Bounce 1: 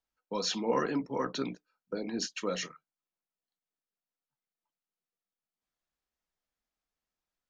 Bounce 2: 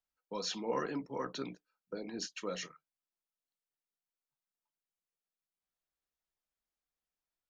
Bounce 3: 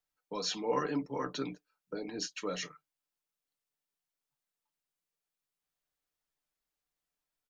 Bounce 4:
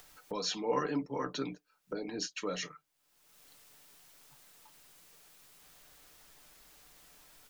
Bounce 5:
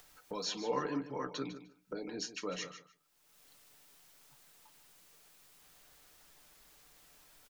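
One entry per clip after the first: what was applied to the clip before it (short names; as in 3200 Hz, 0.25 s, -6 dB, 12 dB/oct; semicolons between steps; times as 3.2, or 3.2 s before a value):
bell 240 Hz -4 dB 0.31 oct; gain -5.5 dB
comb 6.8 ms, depth 49%; gain +2 dB
upward compressor, threshold -35 dBFS
feedback echo 0.151 s, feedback 16%, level -12 dB; gain -3 dB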